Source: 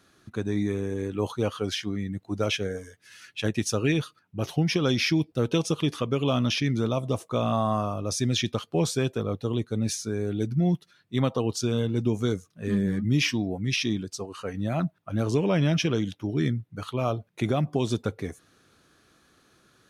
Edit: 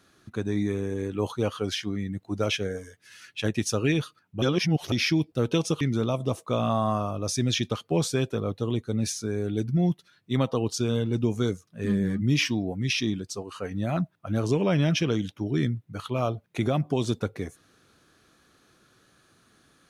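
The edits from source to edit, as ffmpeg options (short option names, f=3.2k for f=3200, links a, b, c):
-filter_complex "[0:a]asplit=4[a][b][c][d];[a]atrim=end=4.422[e];[b]atrim=start=4.418:end=4.922,asetpts=PTS-STARTPTS,areverse[f];[c]atrim=start=4.918:end=5.812[g];[d]atrim=start=6.638[h];[e][f]acrossfade=d=0.004:c1=hsin:c2=hsin[i];[i][g]acrossfade=d=0.004:c1=hsin:c2=hsin[j];[j][h]acrossfade=d=0.004:c1=hsin:c2=hsin"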